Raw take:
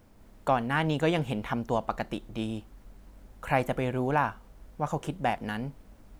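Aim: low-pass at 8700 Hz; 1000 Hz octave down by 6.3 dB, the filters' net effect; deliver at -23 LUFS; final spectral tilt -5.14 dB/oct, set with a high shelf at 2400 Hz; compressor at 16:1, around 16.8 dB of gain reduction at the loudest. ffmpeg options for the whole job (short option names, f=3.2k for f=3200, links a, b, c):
-af "lowpass=8.7k,equalizer=f=1k:t=o:g=-7.5,highshelf=f=2.4k:g=-7.5,acompressor=threshold=-40dB:ratio=16,volume=23.5dB"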